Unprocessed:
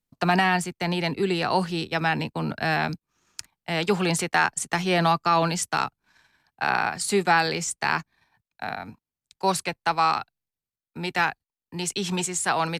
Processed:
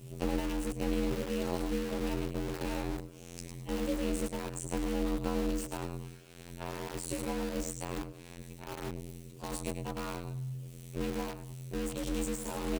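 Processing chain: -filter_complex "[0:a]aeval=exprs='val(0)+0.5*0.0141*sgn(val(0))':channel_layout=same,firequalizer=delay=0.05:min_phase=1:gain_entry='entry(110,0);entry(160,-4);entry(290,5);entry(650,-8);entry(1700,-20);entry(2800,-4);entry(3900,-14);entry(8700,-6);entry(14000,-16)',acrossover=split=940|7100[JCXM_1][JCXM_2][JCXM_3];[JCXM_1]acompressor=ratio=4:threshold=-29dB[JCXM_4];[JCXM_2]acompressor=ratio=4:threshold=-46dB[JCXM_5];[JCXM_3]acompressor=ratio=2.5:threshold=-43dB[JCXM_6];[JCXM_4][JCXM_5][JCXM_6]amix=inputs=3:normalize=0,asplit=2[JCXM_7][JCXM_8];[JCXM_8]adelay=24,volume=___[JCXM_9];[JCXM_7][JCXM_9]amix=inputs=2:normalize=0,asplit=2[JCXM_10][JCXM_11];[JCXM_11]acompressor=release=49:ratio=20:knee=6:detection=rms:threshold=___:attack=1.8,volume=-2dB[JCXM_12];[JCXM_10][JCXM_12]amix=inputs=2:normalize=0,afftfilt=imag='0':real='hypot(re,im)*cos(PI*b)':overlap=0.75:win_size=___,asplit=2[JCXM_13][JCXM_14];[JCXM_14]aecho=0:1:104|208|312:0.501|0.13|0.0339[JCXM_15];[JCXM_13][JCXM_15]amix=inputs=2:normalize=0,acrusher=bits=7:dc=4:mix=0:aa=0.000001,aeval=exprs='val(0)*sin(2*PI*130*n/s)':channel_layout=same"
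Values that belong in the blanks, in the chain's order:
-13dB, -39dB, 2048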